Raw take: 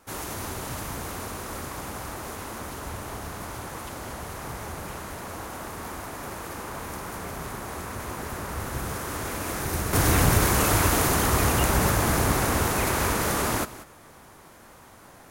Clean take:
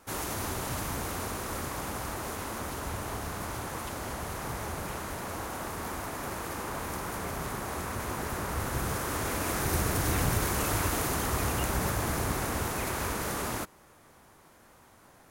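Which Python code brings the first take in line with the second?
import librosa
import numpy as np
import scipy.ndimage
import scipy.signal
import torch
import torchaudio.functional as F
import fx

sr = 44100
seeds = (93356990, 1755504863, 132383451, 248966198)

y = fx.fix_echo_inverse(x, sr, delay_ms=188, level_db=-16.0)
y = fx.fix_level(y, sr, at_s=9.93, step_db=-7.5)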